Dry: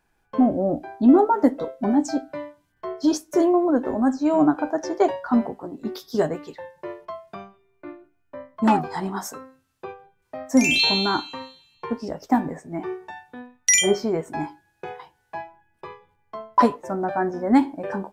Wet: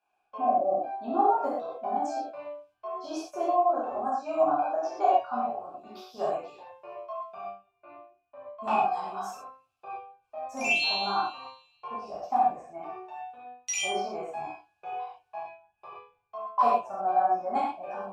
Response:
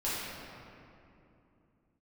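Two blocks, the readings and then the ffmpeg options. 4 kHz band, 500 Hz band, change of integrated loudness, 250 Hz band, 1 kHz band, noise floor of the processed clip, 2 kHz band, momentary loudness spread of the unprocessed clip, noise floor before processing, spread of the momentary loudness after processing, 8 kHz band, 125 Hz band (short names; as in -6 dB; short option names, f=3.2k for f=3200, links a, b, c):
-9.0 dB, -6.0 dB, -7.0 dB, -19.5 dB, 0.0 dB, -76 dBFS, -6.0 dB, 22 LU, -68 dBFS, 20 LU, -14.0 dB, under -15 dB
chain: -filter_complex "[0:a]asplit=3[a][b][c];[a]bandpass=f=730:t=q:w=8,volume=0dB[d];[b]bandpass=f=1.09k:t=q:w=8,volume=-6dB[e];[c]bandpass=f=2.44k:t=q:w=8,volume=-9dB[f];[d][e][f]amix=inputs=3:normalize=0,asubboost=boost=7:cutoff=100,crystalizer=i=3.5:c=0[g];[1:a]atrim=start_sample=2205,atrim=end_sample=6174[h];[g][h]afir=irnorm=-1:irlink=0"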